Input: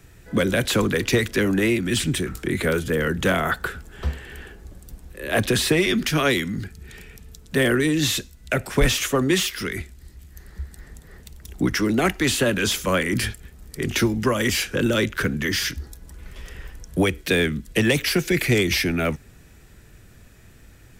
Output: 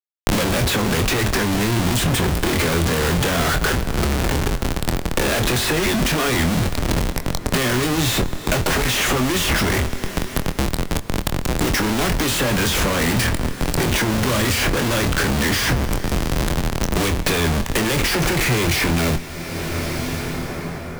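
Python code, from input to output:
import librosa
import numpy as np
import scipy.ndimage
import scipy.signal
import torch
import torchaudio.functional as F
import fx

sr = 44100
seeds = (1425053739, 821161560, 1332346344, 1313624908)

y = fx.peak_eq(x, sr, hz=fx.line((1.45, 760.0), (1.97, 3000.0)), db=-11.0, octaves=2.0, at=(1.45, 1.97), fade=0.02)
y = fx.schmitt(y, sr, flips_db=-36.0)
y = fx.doubler(y, sr, ms=24.0, db=-8.0)
y = fx.rev_plate(y, sr, seeds[0], rt60_s=4.3, hf_ratio=0.75, predelay_ms=0, drr_db=16.0)
y = fx.band_squash(y, sr, depth_pct=100)
y = y * librosa.db_to_amplitude(3.5)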